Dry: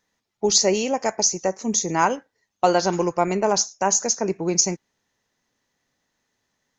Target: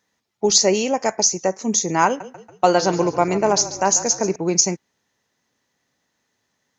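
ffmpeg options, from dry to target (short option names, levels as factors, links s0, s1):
-filter_complex "[0:a]highpass=68,asettb=1/sr,asplit=3[s0][s1][s2];[s0]atrim=end=2.064[s3];[s1]atrim=start=2.06:end=4.36,asetpts=PTS-STARTPTS,afade=t=in:d=0.004:c=qsin,afade=t=out:st=2.296:d=0.004:c=qsin,asplit=6[s4][s5][s6][s7][s8][s9];[s5]adelay=141,afreqshift=-31,volume=0.2[s10];[s6]adelay=282,afreqshift=-62,volume=0.102[s11];[s7]adelay=423,afreqshift=-93,volume=0.0519[s12];[s8]adelay=564,afreqshift=-124,volume=0.0266[s13];[s9]adelay=705,afreqshift=-155,volume=0.0135[s14];[s4][s10][s11][s12][s13][s14]amix=inputs=6:normalize=0,atrim=end_sample=101430[s15];[s2]atrim=start=4.356[s16];[s3][s15]acrossfade=d=0.004:c1=hsin:c2=qsin[s17];[s17][s16]acrossfade=d=0.004:c1=qsin:c2=hsin,volume=1.33"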